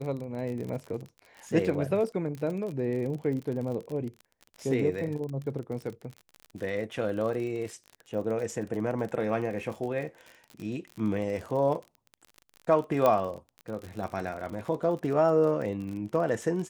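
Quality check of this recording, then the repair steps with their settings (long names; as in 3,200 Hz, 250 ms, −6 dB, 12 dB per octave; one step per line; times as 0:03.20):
surface crackle 45 per second −35 dBFS
0:13.06: click −12 dBFS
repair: click removal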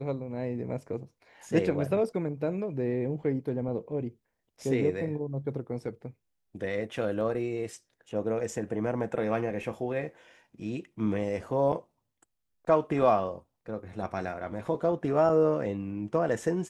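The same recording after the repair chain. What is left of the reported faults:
none of them is left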